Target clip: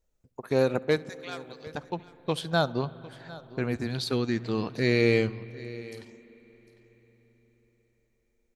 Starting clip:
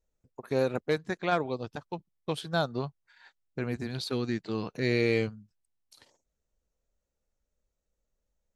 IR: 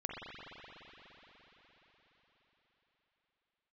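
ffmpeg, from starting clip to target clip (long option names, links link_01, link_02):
-filter_complex "[0:a]asettb=1/sr,asplit=3[link_01][link_02][link_03];[link_01]atrim=end=1.094[link_04];[link_02]atrim=start=1.09:end=1.67,asetpts=PTS-STARTPTS,afade=type=in:duration=0.004:curve=qsin,afade=type=out:start_time=0.576:duration=0.004:curve=qsin,aderivative[link_05];[link_03]atrim=start=1.666[link_06];[link_04][link_05]acrossfade=duration=0.004:curve1=hsin:curve2=qsin[link_07];[link_07][link_06]acrossfade=duration=0.004:curve1=qsin:curve2=hsin,aecho=1:1:752:0.112,asplit=2[link_08][link_09];[1:a]atrim=start_sample=2205,lowshelf=frequency=120:gain=11.5,adelay=68[link_10];[link_09][link_10]afir=irnorm=-1:irlink=0,volume=-21dB[link_11];[link_08][link_11]amix=inputs=2:normalize=0,volume=3.5dB"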